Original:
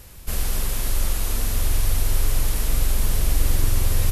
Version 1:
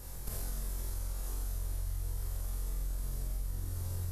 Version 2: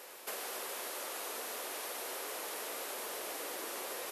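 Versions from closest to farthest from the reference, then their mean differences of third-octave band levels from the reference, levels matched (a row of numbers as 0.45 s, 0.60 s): 1, 2; 5.5 dB, 8.5 dB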